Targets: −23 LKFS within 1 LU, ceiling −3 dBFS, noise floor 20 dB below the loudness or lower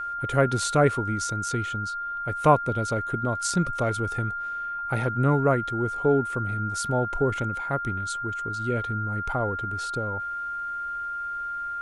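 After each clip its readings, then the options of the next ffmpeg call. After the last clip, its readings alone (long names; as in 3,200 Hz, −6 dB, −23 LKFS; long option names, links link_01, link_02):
interfering tone 1,400 Hz; level of the tone −29 dBFS; integrated loudness −26.5 LKFS; sample peak −5.5 dBFS; target loudness −23.0 LKFS
→ -af "bandreject=frequency=1400:width=30"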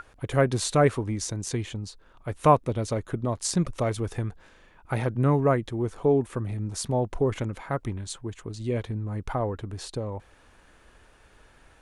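interfering tone none found; integrated loudness −27.5 LKFS; sample peak −5.5 dBFS; target loudness −23.0 LKFS
→ -af "volume=4.5dB,alimiter=limit=-3dB:level=0:latency=1"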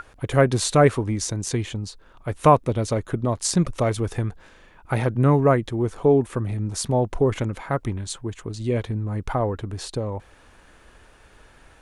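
integrated loudness −23.0 LKFS; sample peak −3.0 dBFS; background noise floor −53 dBFS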